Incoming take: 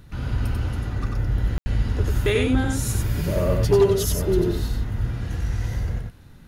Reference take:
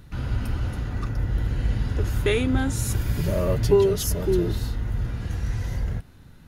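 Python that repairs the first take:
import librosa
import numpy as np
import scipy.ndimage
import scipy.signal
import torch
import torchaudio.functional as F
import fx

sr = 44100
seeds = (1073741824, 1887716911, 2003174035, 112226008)

y = fx.fix_declip(x, sr, threshold_db=-10.0)
y = fx.fix_ambience(y, sr, seeds[0], print_start_s=5.96, print_end_s=6.46, start_s=1.58, end_s=1.66)
y = fx.fix_echo_inverse(y, sr, delay_ms=93, level_db=-3.5)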